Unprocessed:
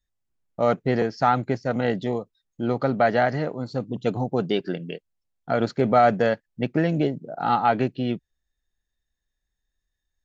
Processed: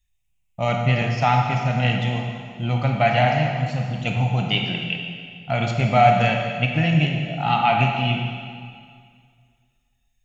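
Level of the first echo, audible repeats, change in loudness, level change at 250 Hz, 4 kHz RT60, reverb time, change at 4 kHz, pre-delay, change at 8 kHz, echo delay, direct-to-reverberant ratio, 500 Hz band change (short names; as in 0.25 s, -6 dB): none, none, +3.0 dB, 0.0 dB, 2.0 s, 2.1 s, +12.0 dB, 18 ms, n/a, none, 1.0 dB, -2.0 dB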